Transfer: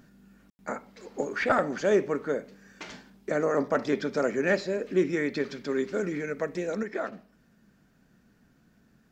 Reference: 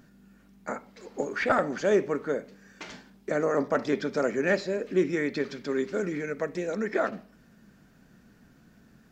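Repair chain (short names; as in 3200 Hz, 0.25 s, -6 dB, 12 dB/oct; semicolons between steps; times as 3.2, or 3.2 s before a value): room tone fill 0.5–0.59; gain 0 dB, from 6.83 s +5.5 dB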